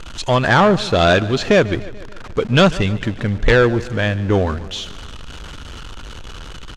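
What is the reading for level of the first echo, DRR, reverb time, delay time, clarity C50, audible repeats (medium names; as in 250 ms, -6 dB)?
-18.5 dB, no reverb, no reverb, 145 ms, no reverb, 4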